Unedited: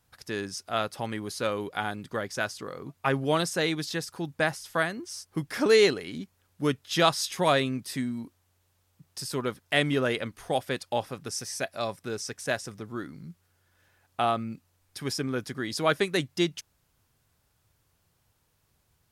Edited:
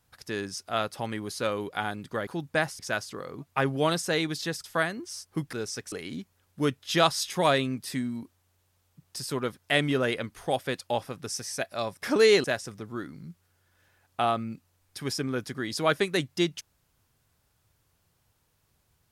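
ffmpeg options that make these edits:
-filter_complex "[0:a]asplit=8[a][b][c][d][e][f][g][h];[a]atrim=end=2.272[i];[b]atrim=start=4.118:end=4.642[j];[c]atrim=start=2.268:end=4.122[k];[d]atrim=start=4.638:end=5.532[l];[e]atrim=start=12.048:end=12.442[m];[f]atrim=start=5.938:end=12.052[n];[g]atrim=start=5.528:end=5.942[o];[h]atrim=start=12.438[p];[i][j]acrossfade=d=0.004:c1=hsin:c2=hsin[q];[q][k]acrossfade=d=0.004:c1=hsin:c2=hsin[r];[r][l]acrossfade=d=0.004:c1=hsin:c2=hsin[s];[s][m]acrossfade=d=0.004:c1=hsin:c2=hsin[t];[t][n]acrossfade=d=0.004:c1=hsin:c2=hsin[u];[u][o]acrossfade=d=0.004:c1=hsin:c2=hsin[v];[v][p]acrossfade=d=0.004:c1=hsin:c2=hsin"

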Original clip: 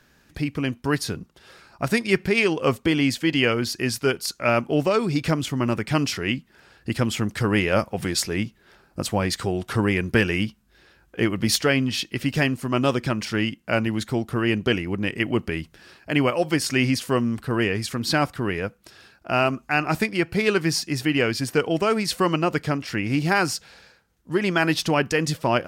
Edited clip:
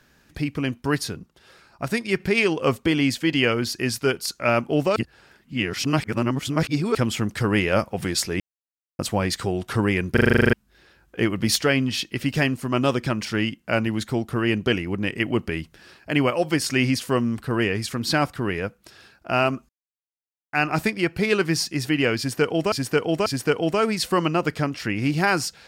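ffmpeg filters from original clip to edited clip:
-filter_complex "[0:a]asplit=20[a][b][c][d][e][f][g][h][i][j][k][l][m][n][o][p][q][r][s][t];[a]atrim=end=1.082[u];[b]atrim=start=1.078:end=2.202,asetpts=PTS-STARTPTS,volume=-3dB[v];[c]atrim=start=2.198:end=4.962[w];[d]atrim=start=4.958:end=6.952,asetpts=PTS-STARTPTS,areverse[x];[e]atrim=start=6.948:end=8.4,asetpts=PTS-STARTPTS,afade=t=out:st=1.448:d=0.004:c=hsin[y];[f]atrim=start=8.4:end=8.99,asetpts=PTS-STARTPTS,volume=0[z];[g]atrim=start=8.99:end=10.172,asetpts=PTS-STARTPTS,afade=t=in:d=0.004:c=hsin[aa];[h]atrim=start=10.128:end=10.172[ab];[i]atrim=start=10.128:end=10.172[ac];[j]atrim=start=10.128:end=10.172[ad];[k]atrim=start=10.128:end=10.172[ae];[l]atrim=start=10.128:end=10.172[af];[m]atrim=start=10.128:end=10.172[ag];[n]atrim=start=10.128:end=10.172[ah];[o]atrim=start=10.128:end=10.172[ai];[p]atrim=start=10.128:end=10.172[aj];[q]atrim=start=10.528:end=19.69,asetpts=PTS-STARTPTS,afade=t=out:st=9.158:d=0.004:c=hsin,apad=pad_dur=0.84[ak];[r]atrim=start=19.69:end=21.882,asetpts=PTS-STARTPTS,afade=t=in:d=0.004:c=hsin[al];[s]atrim=start=21.338:end=21.882[am];[t]atrim=start=21.338[an];[u][v]acrossfade=d=0.004:c1=hsin:c2=hsin[ao];[ao][w]acrossfade=d=0.004:c1=hsin:c2=hsin[ap];[ap][x]acrossfade=d=0.004:c1=hsin:c2=hsin[aq];[y][z][aa]concat=n=3:v=0:a=1[ar];[aq][ar]acrossfade=d=0.004:c1=hsin:c2=hsin[as];[as][ab]acrossfade=d=0.004:c1=hsin:c2=hsin[at];[at][ac]acrossfade=d=0.004:c1=hsin:c2=hsin[au];[au][ad]acrossfade=d=0.004:c1=hsin:c2=hsin[av];[av][ae]acrossfade=d=0.004:c1=hsin:c2=hsin[aw];[aw][af]acrossfade=d=0.004:c1=hsin:c2=hsin[ax];[ax][ag]acrossfade=d=0.004:c1=hsin:c2=hsin[ay];[ay][ah]acrossfade=d=0.004:c1=hsin:c2=hsin[az];[az][ai]acrossfade=d=0.004:c1=hsin:c2=hsin[ba];[ba][aj]acrossfade=d=0.004:c1=hsin:c2=hsin[bb];[ak][al]concat=n=2:v=0:a=1[bc];[bb][bc]acrossfade=d=0.004:c1=hsin:c2=hsin[bd];[bd][am]acrossfade=d=0.004:c1=hsin:c2=hsin[be];[be][an]acrossfade=d=0.004:c1=hsin:c2=hsin"

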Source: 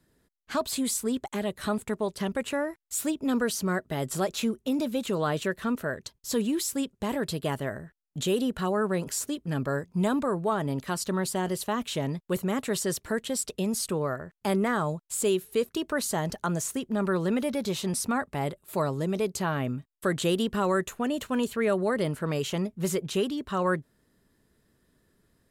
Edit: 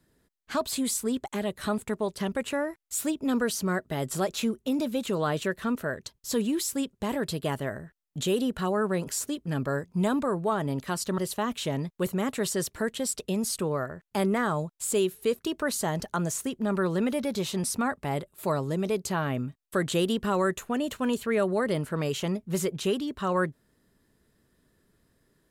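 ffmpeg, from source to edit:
-filter_complex "[0:a]asplit=2[a][b];[a]atrim=end=11.182[c];[b]atrim=start=11.478[d];[c][d]acrossfade=d=0.004:c1=hsin:c2=hsin"

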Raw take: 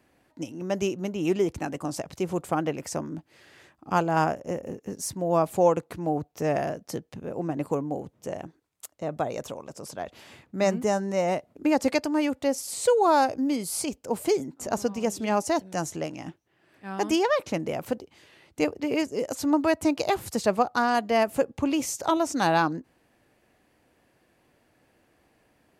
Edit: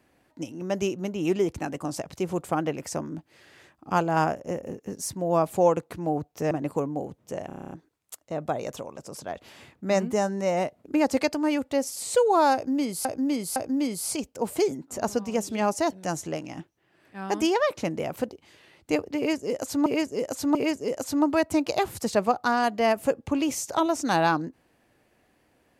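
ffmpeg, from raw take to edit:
-filter_complex "[0:a]asplit=14[a][b][c][d][e][f][g][h][i][j][k][l][m][n];[a]atrim=end=6.512[o];[b]atrim=start=7.458:end=8.452[p];[c]atrim=start=8.418:end=8.452[q];[d]atrim=start=8.418:end=8.452[r];[e]atrim=start=8.418:end=8.452[s];[f]atrim=start=8.418:end=8.452[t];[g]atrim=start=8.418:end=8.452[u];[h]atrim=start=8.418:end=8.452[v];[i]atrim=start=8.418:end=8.452[w];[j]atrim=start=8.418:end=13.762[x];[k]atrim=start=13.248:end=13.762[y];[l]atrim=start=13.248:end=19.552[z];[m]atrim=start=18.858:end=19.552[aa];[n]atrim=start=18.858[ab];[o][p]acrossfade=d=0.004:c1=hsin:c2=hsin[ac];[ac][q]acrossfade=d=0.004:c1=hsin:c2=hsin[ad];[ad][r]acrossfade=d=0.004:c1=hsin:c2=hsin[ae];[ae][s]acrossfade=d=0.004:c1=hsin:c2=hsin[af];[af][t]acrossfade=d=0.004:c1=hsin:c2=hsin[ag];[ag][u]acrossfade=d=0.004:c1=hsin:c2=hsin[ah];[ah][v]acrossfade=d=0.004:c1=hsin:c2=hsin[ai];[ai][w]acrossfade=d=0.004:c1=hsin:c2=hsin[aj];[aj][x]acrossfade=d=0.004:c1=hsin:c2=hsin[ak];[ak][y]acrossfade=d=0.004:c1=hsin:c2=hsin[al];[al][z]acrossfade=d=0.004:c1=hsin:c2=hsin[am];[am][aa]acrossfade=d=0.004:c1=hsin:c2=hsin[an];[an][ab]acrossfade=d=0.004:c1=hsin:c2=hsin"

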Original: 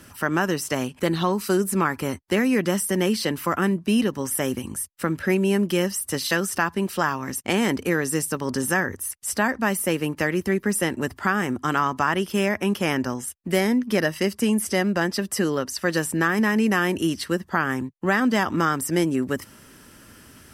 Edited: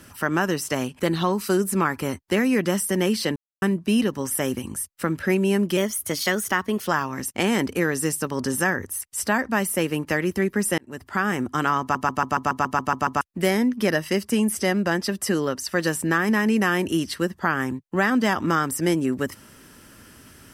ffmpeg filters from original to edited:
-filter_complex "[0:a]asplit=16[a][b][c][d][e][f][g][h][i][j][k][l][m][n][o][p];[a]atrim=end=3.36,asetpts=PTS-STARTPTS,afade=t=out:st=3.356:d=0.004:c=hsin[q];[b]atrim=start=3.36:end=3.62,asetpts=PTS-STARTPTS,volume=0[r];[c]atrim=start=3.62:end=5.774,asetpts=PTS-STARTPTS,afade=t=in:d=0.004:c=hsin[s];[d]atrim=start=5.77:end=6.97,asetpts=PTS-STARTPTS,asetrate=48069,aresample=44100,atrim=end_sample=48550,asetpts=PTS-STARTPTS[t];[e]atrim=start=6.966:end=10.88,asetpts=PTS-STARTPTS,afade=t=out:st=3.91:d=0.004:c=hsin[u];[f]atrim=start=10.88:end=12.052,asetpts=PTS-STARTPTS,afade=t=in:d=0.49[v];[g]atrim=start=11.908:end=12.052[w];[h]atrim=start=11.908:end=12.052[x];[i]atrim=start=11.908:end=12.052[y];[j]atrim=start=11.908:end=12.052[z];[k]atrim=start=11.908:end=12.052[aa];[l]atrim=start=11.908:end=12.052[ab];[m]atrim=start=11.908:end=12.052[ac];[n]atrim=start=11.908:end=12.052[ad];[o]atrim=start=11.908:end=12.052[ae];[p]atrim=start=13.308[af];[q][r][s]concat=n=3:v=0:a=1[ag];[ag][t]acrossfade=d=0.004:c1=hsin:c2=hsin[ah];[u][v]concat=n=2:v=0:a=1[ai];[ah][ai]acrossfade=d=0.004:c1=hsin:c2=hsin[aj];[aj][w]acrossfade=d=0.004:c1=hsin:c2=hsin[ak];[ak][x]acrossfade=d=0.004:c1=hsin:c2=hsin[al];[al][y]acrossfade=d=0.004:c1=hsin:c2=hsin[am];[am][z]acrossfade=d=0.004:c1=hsin:c2=hsin[an];[an][aa]acrossfade=d=0.004:c1=hsin:c2=hsin[ao];[ao][ab]acrossfade=d=0.004:c1=hsin:c2=hsin[ap];[ap][ac]acrossfade=d=0.004:c1=hsin:c2=hsin[aq];[aq][ad]acrossfade=d=0.004:c1=hsin:c2=hsin[ar];[ar][ae]acrossfade=d=0.004:c1=hsin:c2=hsin[as];[as][af]acrossfade=d=0.004:c1=hsin:c2=hsin"

